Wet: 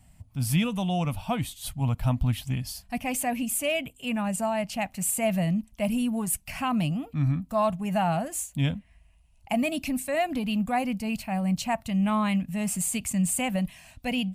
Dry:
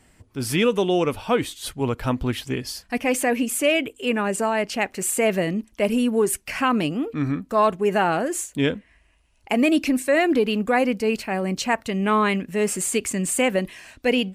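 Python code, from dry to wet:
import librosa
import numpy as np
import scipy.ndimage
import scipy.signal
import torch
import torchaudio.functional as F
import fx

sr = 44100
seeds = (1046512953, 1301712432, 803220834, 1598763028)

y = fx.curve_eq(x, sr, hz=(170.0, 280.0, 400.0, 680.0, 1600.0, 2600.0, 5700.0, 13000.0), db=(0, -13, -29, -6, -17, -10, -11, -3))
y = y * librosa.db_to_amplitude(4.0)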